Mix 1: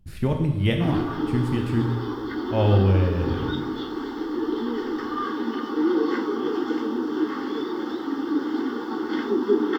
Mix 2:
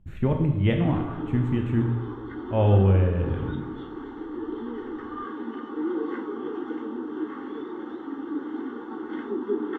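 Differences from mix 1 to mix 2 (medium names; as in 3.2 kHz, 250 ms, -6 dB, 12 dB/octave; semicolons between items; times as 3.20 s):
background -6.5 dB; master: add boxcar filter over 9 samples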